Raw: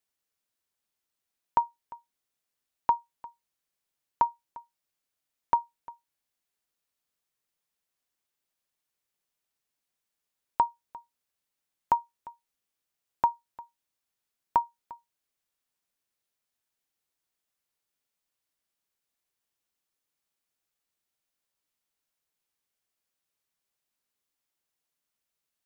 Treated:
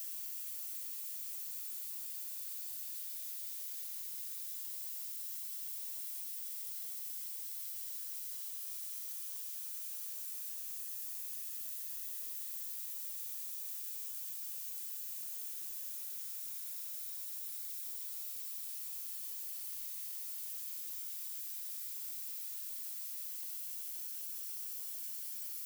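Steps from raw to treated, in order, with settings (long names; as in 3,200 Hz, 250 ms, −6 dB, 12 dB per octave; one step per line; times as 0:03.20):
background noise violet −58 dBFS
extreme stretch with random phases 47×, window 0.10 s, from 0:17.28
level +15 dB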